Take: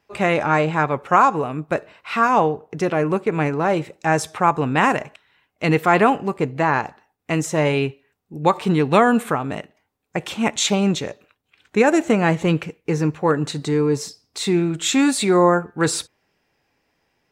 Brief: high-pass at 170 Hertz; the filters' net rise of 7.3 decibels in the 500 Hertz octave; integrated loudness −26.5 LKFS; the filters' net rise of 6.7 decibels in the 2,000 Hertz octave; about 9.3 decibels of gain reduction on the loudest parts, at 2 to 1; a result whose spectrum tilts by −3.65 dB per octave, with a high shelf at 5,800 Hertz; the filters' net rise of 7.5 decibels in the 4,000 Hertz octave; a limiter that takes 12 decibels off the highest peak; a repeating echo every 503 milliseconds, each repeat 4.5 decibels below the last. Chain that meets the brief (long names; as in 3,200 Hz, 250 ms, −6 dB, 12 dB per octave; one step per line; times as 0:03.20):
high-pass filter 170 Hz
parametric band 500 Hz +8.5 dB
parametric band 2,000 Hz +6 dB
parametric band 4,000 Hz +4.5 dB
high-shelf EQ 5,800 Hz +7.5 dB
downward compressor 2 to 1, threshold −21 dBFS
brickwall limiter −15 dBFS
repeating echo 503 ms, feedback 60%, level −4.5 dB
level −2 dB